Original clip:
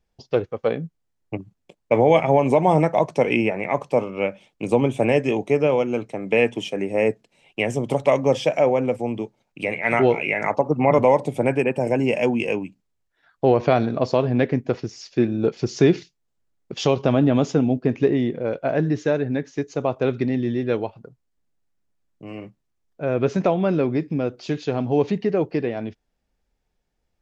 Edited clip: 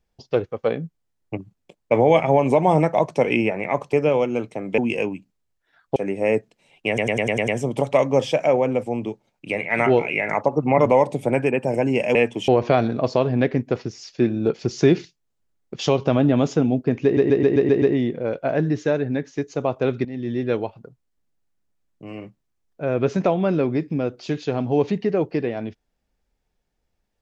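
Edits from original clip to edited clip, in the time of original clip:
0:03.93–0:05.51: remove
0:06.36–0:06.69: swap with 0:12.28–0:13.46
0:07.61: stutter 0.10 s, 7 plays
0:18.02: stutter 0.13 s, 7 plays
0:20.25–0:20.60: fade in, from −15.5 dB

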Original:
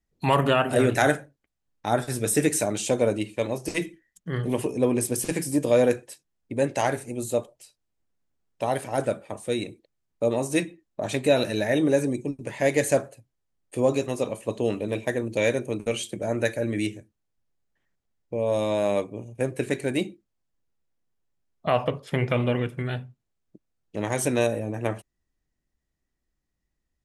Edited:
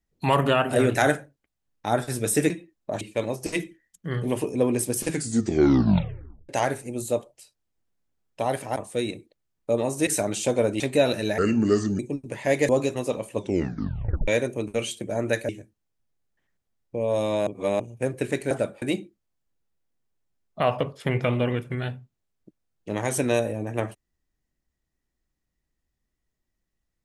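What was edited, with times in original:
0:02.50–0:03.23: swap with 0:10.60–0:11.11
0:05.30: tape stop 1.41 s
0:08.98–0:09.29: move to 0:19.89
0:11.69–0:12.14: play speed 74%
0:12.84–0:13.81: remove
0:14.48: tape stop 0.92 s
0:16.61–0:16.87: remove
0:18.85–0:19.18: reverse

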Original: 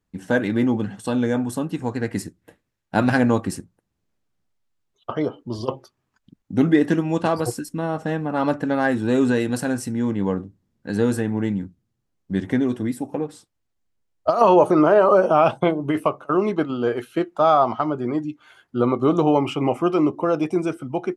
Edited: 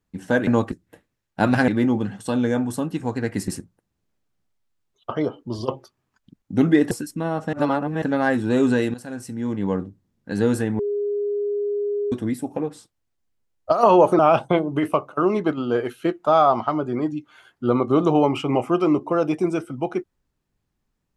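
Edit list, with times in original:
0:00.47–0:02.27: swap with 0:03.23–0:03.48
0:06.91–0:07.49: remove
0:08.11–0:08.60: reverse
0:09.52–0:10.36: fade in, from −16 dB
0:11.37–0:12.70: beep over 410 Hz −21 dBFS
0:14.77–0:15.31: remove

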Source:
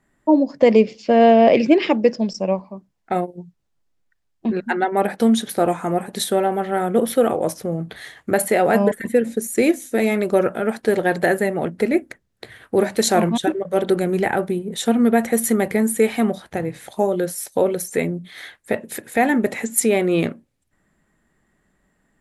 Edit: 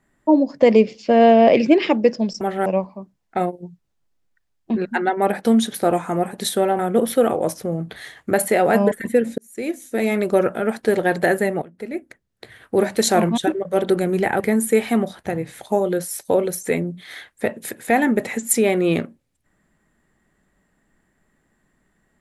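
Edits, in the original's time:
0:06.54–0:06.79: move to 0:02.41
0:09.38–0:10.19: fade in
0:11.62–0:12.85: fade in, from −21 dB
0:14.40–0:15.67: remove

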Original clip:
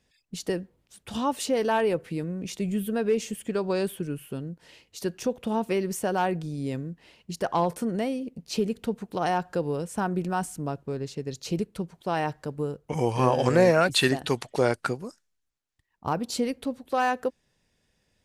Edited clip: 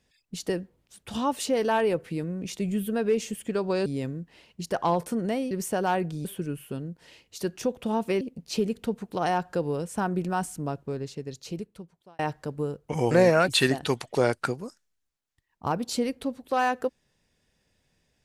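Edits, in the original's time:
0:03.86–0:05.82: swap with 0:06.56–0:08.21
0:10.86–0:12.19: fade out
0:13.11–0:13.52: remove

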